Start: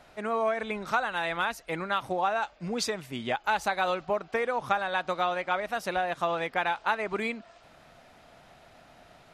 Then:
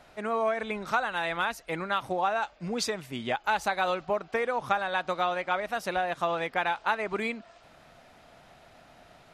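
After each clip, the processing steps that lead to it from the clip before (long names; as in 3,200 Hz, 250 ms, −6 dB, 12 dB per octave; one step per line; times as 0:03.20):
no processing that can be heard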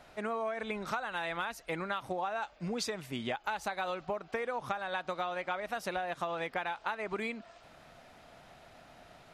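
downward compressor 5 to 1, threshold −31 dBFS, peak gain reduction 10 dB
level −1 dB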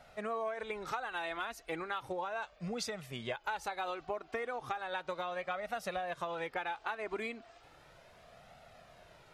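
flanger 0.35 Hz, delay 1.4 ms, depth 1.5 ms, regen −27%
level +1 dB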